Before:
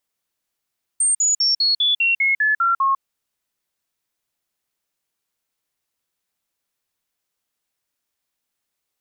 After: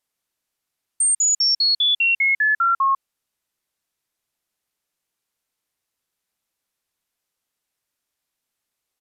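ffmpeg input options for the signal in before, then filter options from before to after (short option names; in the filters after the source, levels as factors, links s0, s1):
-f lavfi -i "aevalsrc='0.188*clip(min(mod(t,0.2),0.15-mod(t,0.2))/0.005,0,1)*sin(2*PI*8680*pow(2,-floor(t/0.2)/3)*mod(t,0.2))':d=2:s=44100"
-af "aresample=32000,aresample=44100"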